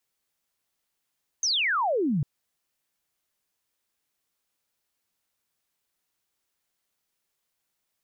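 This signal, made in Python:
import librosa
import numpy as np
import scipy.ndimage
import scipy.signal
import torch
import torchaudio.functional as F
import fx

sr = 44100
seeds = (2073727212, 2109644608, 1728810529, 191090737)

y = fx.laser_zap(sr, level_db=-22, start_hz=6500.0, end_hz=130.0, length_s=0.8, wave='sine')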